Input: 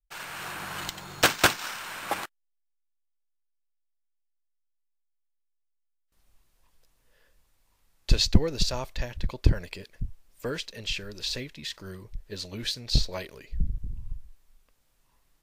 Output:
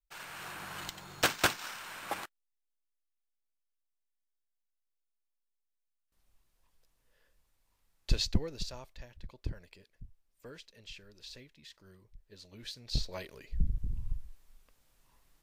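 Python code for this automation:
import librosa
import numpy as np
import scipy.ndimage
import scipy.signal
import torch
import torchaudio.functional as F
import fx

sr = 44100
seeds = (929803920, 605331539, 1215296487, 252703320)

y = fx.gain(x, sr, db=fx.line((8.1, -7.0), (9.01, -17.0), (12.38, -17.0), (13.18, -6.5), (13.96, 0.5)))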